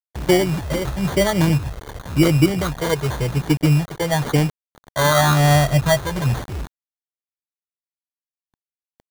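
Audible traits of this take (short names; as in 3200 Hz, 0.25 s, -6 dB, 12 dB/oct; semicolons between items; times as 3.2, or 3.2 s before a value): a quantiser's noise floor 6-bit, dither none; phasing stages 12, 0.94 Hz, lowest notch 230–2000 Hz; aliases and images of a low sample rate 2600 Hz, jitter 0%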